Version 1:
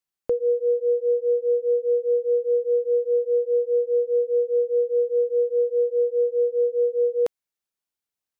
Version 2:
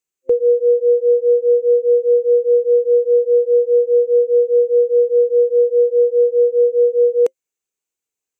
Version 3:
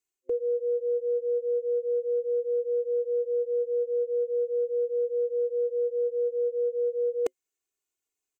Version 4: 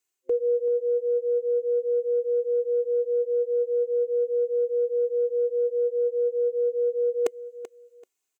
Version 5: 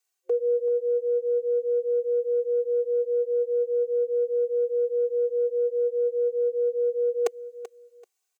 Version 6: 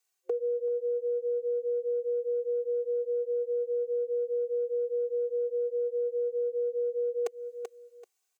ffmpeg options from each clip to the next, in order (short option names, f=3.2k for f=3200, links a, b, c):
-af "superequalizer=6b=1.58:7b=2.51:12b=1.58:15b=2.82"
-af "aecho=1:1:2.8:0.72,areverse,acompressor=threshold=-21dB:ratio=6,areverse,volume=-4.5dB"
-af "lowshelf=f=260:g=-9,aecho=1:1:385|770:0.2|0.0419,volume=6dB"
-af "highpass=f=480:w=0.5412,highpass=f=480:w=1.3066,aecho=1:1:2.6:0.91"
-af "acompressor=threshold=-28dB:ratio=6"